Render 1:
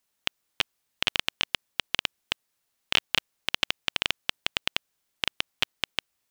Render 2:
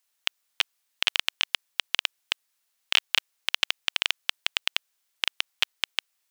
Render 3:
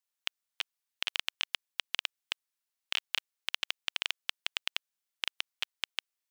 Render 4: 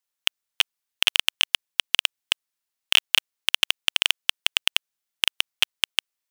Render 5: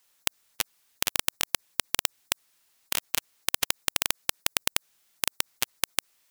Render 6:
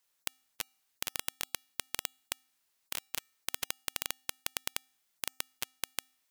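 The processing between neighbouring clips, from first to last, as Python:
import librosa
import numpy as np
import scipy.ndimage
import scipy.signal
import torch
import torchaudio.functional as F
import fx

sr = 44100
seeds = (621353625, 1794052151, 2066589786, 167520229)

y1 = fx.highpass(x, sr, hz=1200.0, slope=6)
y1 = y1 * 10.0 ** (2.5 / 20.0)
y2 = fx.level_steps(y1, sr, step_db=14)
y2 = y2 * 10.0 ** (-4.5 / 20.0)
y3 = fx.leveller(y2, sr, passes=3)
y3 = y3 * 10.0 ** (9.0 / 20.0)
y4 = fx.spectral_comp(y3, sr, ratio=4.0)
y5 = fx.comb_fb(y4, sr, f0_hz=260.0, decay_s=0.59, harmonics='odd', damping=0.0, mix_pct=30)
y5 = y5 * 10.0 ** (-6.5 / 20.0)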